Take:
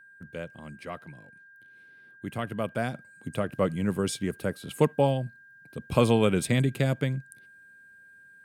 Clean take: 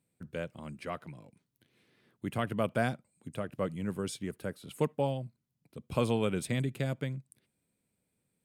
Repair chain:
notch filter 1,600 Hz, Q 30
level 0 dB, from 0:02.94 −7.5 dB

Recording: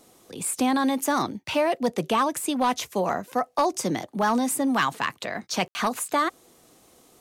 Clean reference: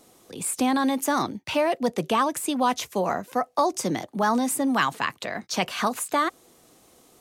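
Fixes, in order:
clipped peaks rebuilt −14.5 dBFS
ambience match 0:05.68–0:05.75

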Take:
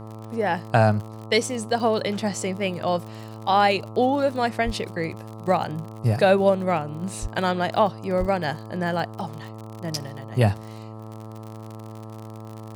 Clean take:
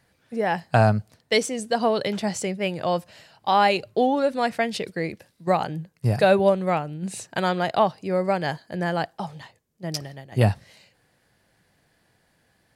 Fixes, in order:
click removal
hum removal 109.8 Hz, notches 12
0:04.65–0:04.77: high-pass filter 140 Hz 24 dB per octave
0:07.21–0:07.33: high-pass filter 140 Hz 24 dB per octave
0:08.19–0:08.31: high-pass filter 140 Hz 24 dB per octave

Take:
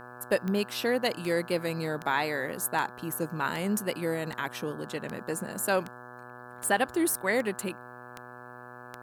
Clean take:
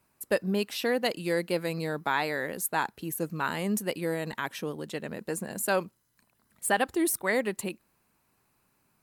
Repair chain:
click removal
hum removal 122.8 Hz, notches 14

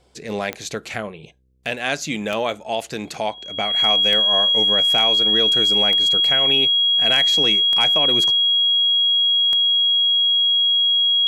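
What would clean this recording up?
clipped peaks rebuilt −7 dBFS
click removal
hum removal 64 Hz, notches 8
notch filter 3,300 Hz, Q 30

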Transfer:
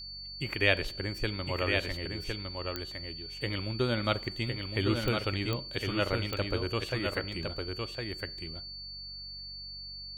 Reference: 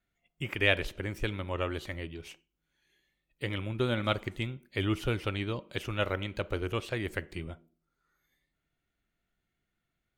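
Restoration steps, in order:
click removal
hum removal 47.5 Hz, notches 4
notch filter 4,500 Hz, Q 30
echo removal 1,059 ms −4.5 dB

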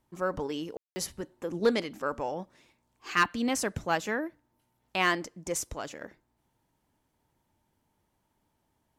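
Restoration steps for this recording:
clipped peaks rebuilt −14.5 dBFS
ambience match 0:00.77–0:00.96

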